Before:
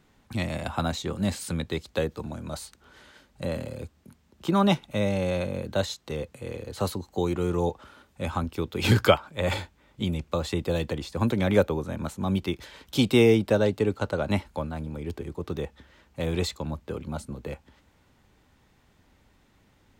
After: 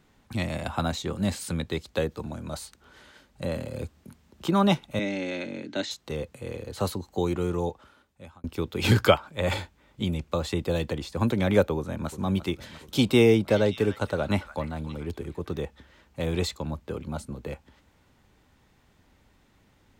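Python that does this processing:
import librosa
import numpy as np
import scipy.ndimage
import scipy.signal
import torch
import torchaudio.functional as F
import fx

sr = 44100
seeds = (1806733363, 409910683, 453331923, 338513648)

y = fx.cabinet(x, sr, low_hz=170.0, low_slope=24, high_hz=6800.0, hz=(180.0, 290.0, 500.0, 740.0, 1100.0, 2100.0), db=(-9, 9, -10, -6, -10, 5), at=(4.99, 5.91))
y = fx.echo_throw(y, sr, start_s=11.77, length_s=0.42, ms=350, feedback_pct=65, wet_db=-12.5)
y = fx.echo_stepped(y, sr, ms=287, hz=1500.0, octaves=1.4, feedback_pct=70, wet_db=-8, at=(13.47, 15.63), fade=0.02)
y = fx.edit(y, sr, fx.clip_gain(start_s=3.74, length_s=0.74, db=3.5),
    fx.fade_out_span(start_s=7.34, length_s=1.1), tone=tone)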